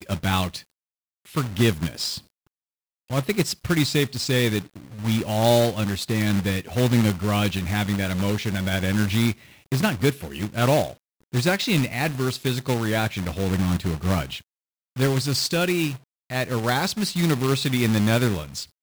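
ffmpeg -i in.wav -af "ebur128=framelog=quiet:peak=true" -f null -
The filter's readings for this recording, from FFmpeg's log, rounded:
Integrated loudness:
  I:         -23.4 LUFS
  Threshold: -33.8 LUFS
Loudness range:
  LRA:         2.9 LU
  Threshold: -43.9 LUFS
  LRA low:   -25.4 LUFS
  LRA high:  -22.5 LUFS
True peak:
  Peak:       -7.8 dBFS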